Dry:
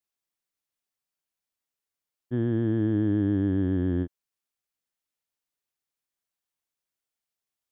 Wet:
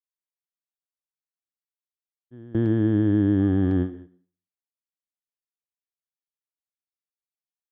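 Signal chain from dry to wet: gate with hold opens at -17 dBFS; 3.39–3.90 s: small resonant body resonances 770/1200 Hz, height 11 dB, ringing for 85 ms; on a send: reverberation RT60 0.45 s, pre-delay 103 ms, DRR 18 dB; on the sum: trim +4 dB

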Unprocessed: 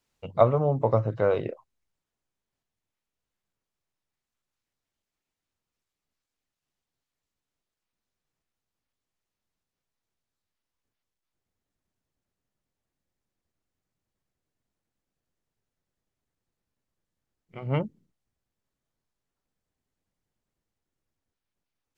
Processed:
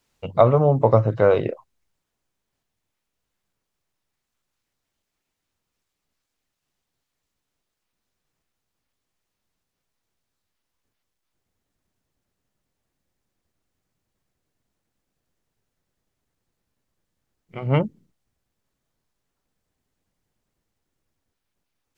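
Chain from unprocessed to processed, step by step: loudness maximiser +8 dB; trim -1 dB

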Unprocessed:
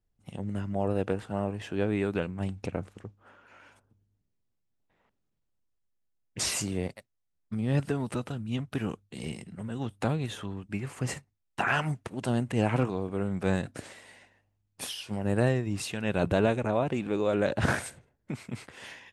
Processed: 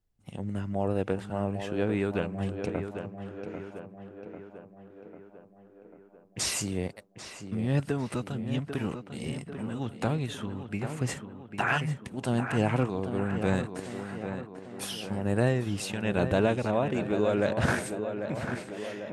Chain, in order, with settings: time-frequency box 11.78–12.14 s, 260–1700 Hz -15 dB; tape echo 795 ms, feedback 64%, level -7 dB, low-pass 2.3 kHz

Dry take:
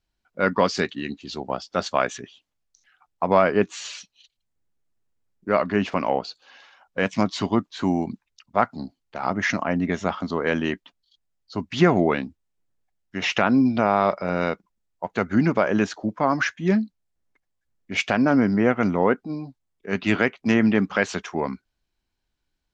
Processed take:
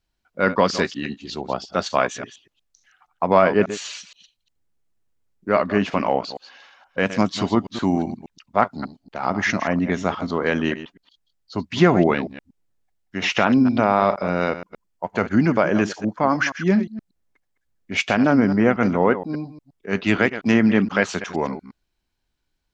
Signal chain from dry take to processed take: chunks repeated in reverse 118 ms, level -12 dB; 14.48–16.73 s: band-stop 3.8 kHz, Q 12; trim +2 dB

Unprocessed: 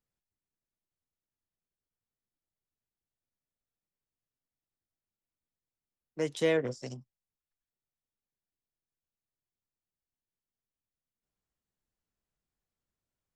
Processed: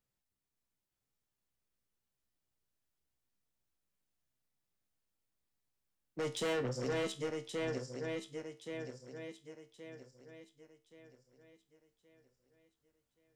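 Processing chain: backward echo that repeats 562 ms, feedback 61%, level -4 dB; saturation -32.5 dBFS, distortion -6 dB; feedback comb 65 Hz, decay 0.31 s, harmonics all, mix 70%; trim +7 dB

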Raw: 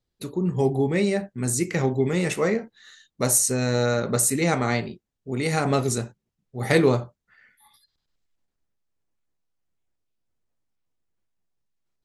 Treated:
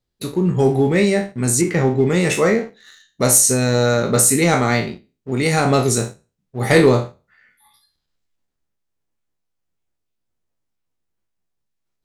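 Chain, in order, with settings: spectral sustain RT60 0.34 s; 1.61–2.10 s: treble shelf 3 kHz -9.5 dB; waveshaping leveller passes 1; trim +2.5 dB

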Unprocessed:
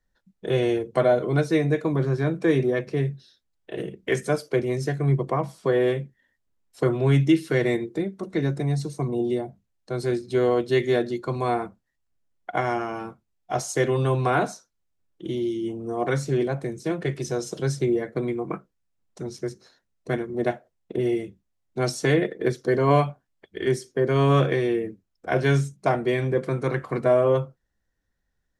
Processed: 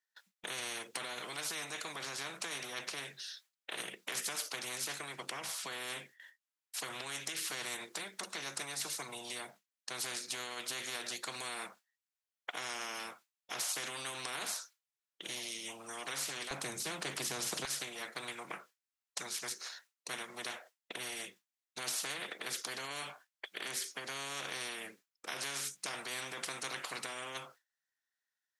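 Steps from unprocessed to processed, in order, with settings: peak limiter -19.5 dBFS, peak gain reduction 11.5 dB; high-pass 1.4 kHz 12 dB/octave, from 16.51 s 240 Hz, from 17.65 s 1.4 kHz; gate with hold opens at -60 dBFS; spectrum-flattening compressor 4:1; trim -2 dB

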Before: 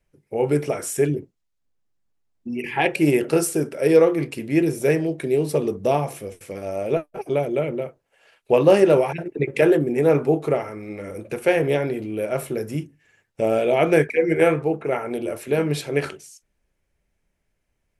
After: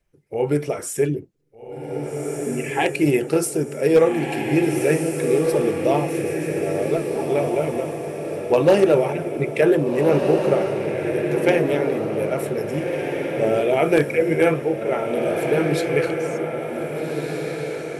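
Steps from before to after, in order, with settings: coarse spectral quantiser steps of 15 dB; wavefolder -6.5 dBFS; echo that smears into a reverb 1635 ms, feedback 44%, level -4 dB

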